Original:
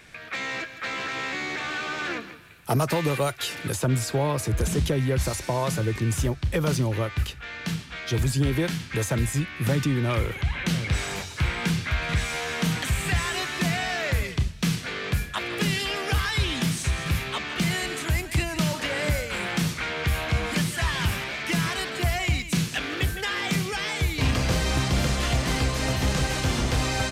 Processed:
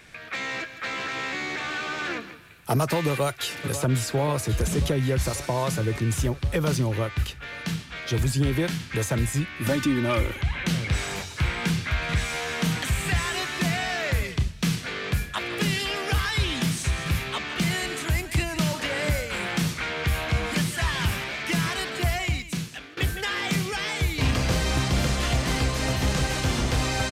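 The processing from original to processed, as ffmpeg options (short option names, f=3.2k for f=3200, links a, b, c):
-filter_complex "[0:a]asplit=2[a][b];[b]afade=t=in:st=3.09:d=0.01,afade=t=out:st=3.59:d=0.01,aecho=0:1:540|1080|1620|2160|2700|3240|3780|4320|4860|5400|5940|6480:0.281838|0.225471|0.180377|0.144301|0.115441|0.0923528|0.0738822|0.0591058|0.0472846|0.0378277|0.0302622|0.0242097[c];[a][c]amix=inputs=2:normalize=0,asettb=1/sr,asplit=3[d][e][f];[d]atrim=end=9.604[g];[e]atrim=start=9.6:end=10.39,asetpts=PTS-STARTPTS,afade=t=in:d=0.004:c=qsin,afade=t=out:st=0.786:d=0.004:c=qsin,aecho=1:1:3.4:0.65,atrim=end_sample=34839[h];[f]atrim=start=10.386[i];[g][h]acrossfade=d=0.004:c1=hsin:c2=qsin[j];[j][i]acrossfade=d=0.004:c1=qsin:c2=hsin,asplit=2[k][l];[k]atrim=end=22.97,asetpts=PTS-STARTPTS,afade=t=out:st=22.1:d=0.87:silence=0.11885[m];[l]atrim=start=22.97,asetpts=PTS-STARTPTS,afade=t=in:d=0.004:c=hsin:silence=0.11885[n];[m][n]concat=n=2:v=0:a=1"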